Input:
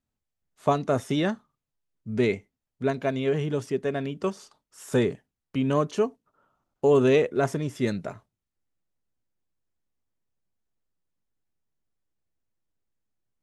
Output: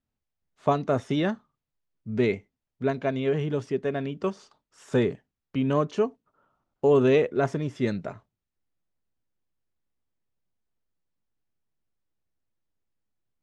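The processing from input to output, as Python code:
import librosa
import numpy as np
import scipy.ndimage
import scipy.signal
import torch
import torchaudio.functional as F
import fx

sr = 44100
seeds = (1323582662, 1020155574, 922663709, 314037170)

y = fx.air_absorb(x, sr, metres=93.0)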